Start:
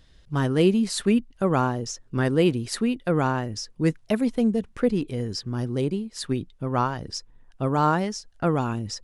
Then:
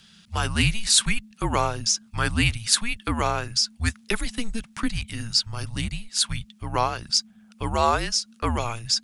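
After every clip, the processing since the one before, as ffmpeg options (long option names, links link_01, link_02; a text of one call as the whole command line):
ffmpeg -i in.wav -af "afreqshift=-230,tiltshelf=frequency=1200:gain=-8.5,volume=4.5dB" out.wav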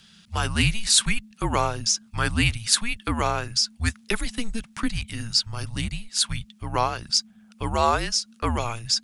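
ffmpeg -i in.wav -af anull out.wav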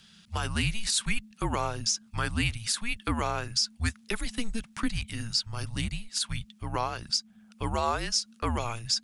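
ffmpeg -i in.wav -af "alimiter=limit=-13dB:level=0:latency=1:release=181,volume=-3dB" out.wav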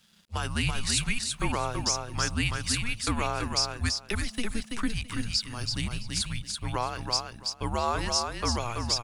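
ffmpeg -i in.wav -af "aeval=exprs='sgn(val(0))*max(abs(val(0))-0.00119,0)':channel_layout=same,aecho=1:1:332|664|996:0.596|0.107|0.0193" out.wav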